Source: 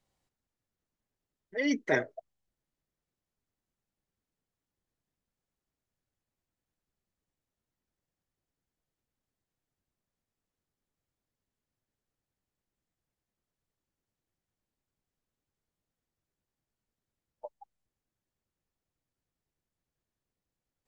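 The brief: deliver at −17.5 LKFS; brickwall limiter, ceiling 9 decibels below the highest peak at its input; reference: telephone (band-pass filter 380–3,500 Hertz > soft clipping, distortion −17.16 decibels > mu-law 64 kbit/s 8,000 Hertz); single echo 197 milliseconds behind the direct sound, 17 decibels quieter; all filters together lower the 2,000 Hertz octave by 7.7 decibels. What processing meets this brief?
parametric band 2,000 Hz −8.5 dB
brickwall limiter −23.5 dBFS
band-pass filter 380–3,500 Hz
single-tap delay 197 ms −17 dB
soft clipping −30 dBFS
level +25 dB
mu-law 64 kbit/s 8,000 Hz

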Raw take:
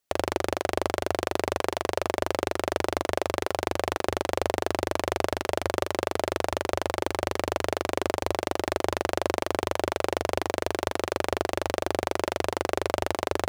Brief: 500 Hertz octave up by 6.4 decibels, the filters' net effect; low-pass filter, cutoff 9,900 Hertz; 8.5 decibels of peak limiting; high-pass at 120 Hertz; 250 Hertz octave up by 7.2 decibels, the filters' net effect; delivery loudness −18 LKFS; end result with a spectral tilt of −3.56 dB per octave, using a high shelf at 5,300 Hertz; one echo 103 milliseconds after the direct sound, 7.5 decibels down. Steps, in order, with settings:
high-pass filter 120 Hz
low-pass filter 9,900 Hz
parametric band 250 Hz +7.5 dB
parametric band 500 Hz +6 dB
high-shelf EQ 5,300 Hz −5 dB
brickwall limiter −12.5 dBFS
single-tap delay 103 ms −7.5 dB
level +10 dB

